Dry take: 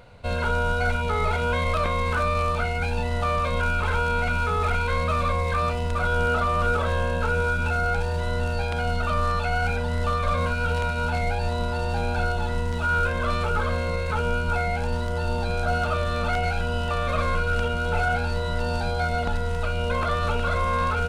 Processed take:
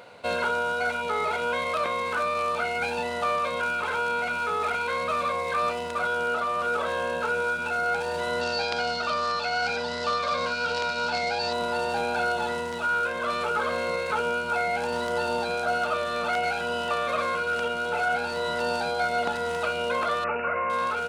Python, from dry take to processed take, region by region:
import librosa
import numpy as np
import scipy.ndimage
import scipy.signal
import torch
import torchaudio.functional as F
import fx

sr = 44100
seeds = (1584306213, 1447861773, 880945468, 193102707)

y = fx.chain(x, sr, fx.lowpass(hz=7900.0, slope=24),
    fx.peak_eq(hz=4800.0, db=12.0, octaves=0.66), at=(8.41, 11.53))
y = fx.chain(y, sr, fx.lowpass(hz=7600.0, slope=12),
    fx.resample_bad(factor=8, down='none', up='filtered'), at=(20.24, 20.7))
y = scipy.signal.sosfilt(scipy.signal.butter(2, 310.0, 'highpass', fs=sr, output='sos'), y)
y = fx.rider(y, sr, range_db=10, speed_s=0.5)